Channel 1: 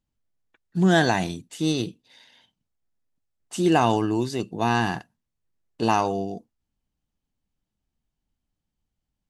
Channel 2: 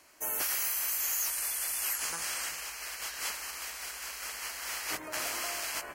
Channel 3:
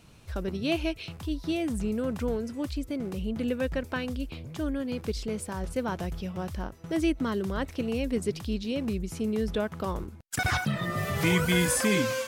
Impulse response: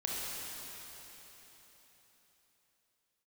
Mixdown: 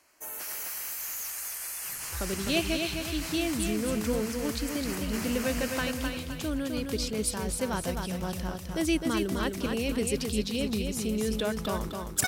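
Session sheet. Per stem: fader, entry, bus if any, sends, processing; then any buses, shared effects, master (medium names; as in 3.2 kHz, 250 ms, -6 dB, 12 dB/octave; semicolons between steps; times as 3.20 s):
mute
-4.5 dB, 0.00 s, no send, echo send -3.5 dB, peaking EQ 3.4 kHz -2.5 dB 0.38 oct; hard clipper -29 dBFS, distortion -15 dB
-1.5 dB, 1.85 s, no send, echo send -5 dB, treble shelf 3.4 kHz +12 dB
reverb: none
echo: feedback delay 258 ms, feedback 39%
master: none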